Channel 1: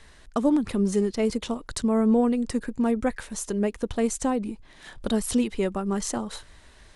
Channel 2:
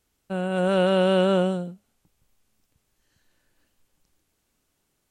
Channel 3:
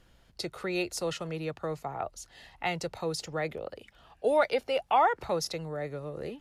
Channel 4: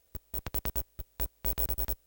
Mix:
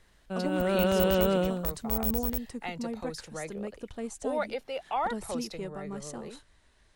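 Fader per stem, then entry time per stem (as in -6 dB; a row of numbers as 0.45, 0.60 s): -12.5, -5.5, -6.5, 0.0 dB; 0.00, 0.00, 0.00, 0.45 s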